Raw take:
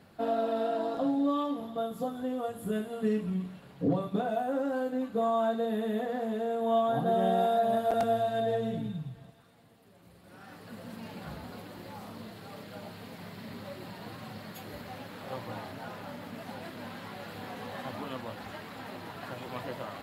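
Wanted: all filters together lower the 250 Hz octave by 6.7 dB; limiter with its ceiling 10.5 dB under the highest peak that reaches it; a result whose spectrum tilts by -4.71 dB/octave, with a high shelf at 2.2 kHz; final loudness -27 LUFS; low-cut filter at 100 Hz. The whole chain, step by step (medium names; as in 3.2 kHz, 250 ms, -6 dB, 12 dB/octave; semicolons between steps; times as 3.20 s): high-pass 100 Hz; peaking EQ 250 Hz -8 dB; treble shelf 2.2 kHz +7 dB; trim +9 dB; peak limiter -15.5 dBFS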